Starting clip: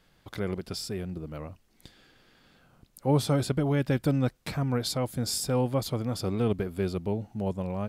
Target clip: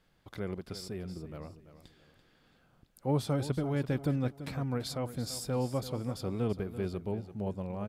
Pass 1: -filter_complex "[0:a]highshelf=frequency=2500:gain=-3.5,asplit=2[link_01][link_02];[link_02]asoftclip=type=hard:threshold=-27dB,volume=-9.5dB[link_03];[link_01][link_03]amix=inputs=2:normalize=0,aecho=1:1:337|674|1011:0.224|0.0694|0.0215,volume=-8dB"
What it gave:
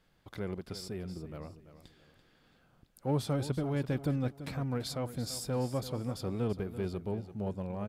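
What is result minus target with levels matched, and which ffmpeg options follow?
hard clipping: distortion +29 dB
-filter_complex "[0:a]highshelf=frequency=2500:gain=-3.5,asplit=2[link_01][link_02];[link_02]asoftclip=type=hard:threshold=-16dB,volume=-9.5dB[link_03];[link_01][link_03]amix=inputs=2:normalize=0,aecho=1:1:337|674|1011:0.224|0.0694|0.0215,volume=-8dB"

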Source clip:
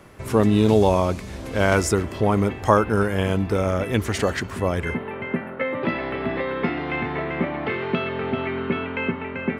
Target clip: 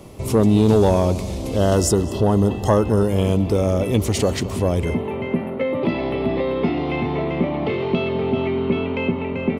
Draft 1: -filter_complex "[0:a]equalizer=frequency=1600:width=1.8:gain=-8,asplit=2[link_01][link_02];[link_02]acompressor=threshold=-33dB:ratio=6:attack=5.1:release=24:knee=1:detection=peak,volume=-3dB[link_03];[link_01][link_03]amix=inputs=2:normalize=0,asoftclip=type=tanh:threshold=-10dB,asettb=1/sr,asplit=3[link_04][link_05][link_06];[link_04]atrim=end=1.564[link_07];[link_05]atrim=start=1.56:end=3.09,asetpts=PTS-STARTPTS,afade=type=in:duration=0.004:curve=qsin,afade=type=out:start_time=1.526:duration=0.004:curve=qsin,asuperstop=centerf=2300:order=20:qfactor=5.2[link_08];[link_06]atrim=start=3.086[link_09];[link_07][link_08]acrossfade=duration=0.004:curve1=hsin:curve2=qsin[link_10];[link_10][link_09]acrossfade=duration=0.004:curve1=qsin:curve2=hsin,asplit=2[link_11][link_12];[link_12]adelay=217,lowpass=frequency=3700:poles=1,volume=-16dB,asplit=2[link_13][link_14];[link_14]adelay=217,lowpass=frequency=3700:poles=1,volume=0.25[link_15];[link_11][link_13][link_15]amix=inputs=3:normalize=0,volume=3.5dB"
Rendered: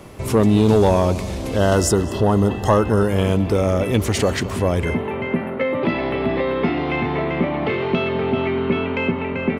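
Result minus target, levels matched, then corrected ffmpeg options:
2,000 Hz band +4.5 dB
-filter_complex "[0:a]equalizer=frequency=1600:width=1.8:gain=-19.5,asplit=2[link_01][link_02];[link_02]acompressor=threshold=-33dB:ratio=6:attack=5.1:release=24:knee=1:detection=peak,volume=-3dB[link_03];[link_01][link_03]amix=inputs=2:normalize=0,asoftclip=type=tanh:threshold=-10dB,asettb=1/sr,asplit=3[link_04][link_05][link_06];[link_04]atrim=end=1.564[link_07];[link_05]atrim=start=1.56:end=3.09,asetpts=PTS-STARTPTS,afade=type=in:duration=0.004:curve=qsin,afade=type=out:start_time=1.526:duration=0.004:curve=qsin,asuperstop=centerf=2300:order=20:qfactor=5.2[link_08];[link_06]atrim=start=3.086[link_09];[link_07][link_08]acrossfade=duration=0.004:curve1=hsin:curve2=qsin[link_10];[link_10][link_09]acrossfade=duration=0.004:curve1=qsin:curve2=hsin,asplit=2[link_11][link_12];[link_12]adelay=217,lowpass=frequency=3700:poles=1,volume=-16dB,asplit=2[link_13][link_14];[link_14]adelay=217,lowpass=frequency=3700:poles=1,volume=0.25[link_15];[link_11][link_13][link_15]amix=inputs=3:normalize=0,volume=3.5dB"

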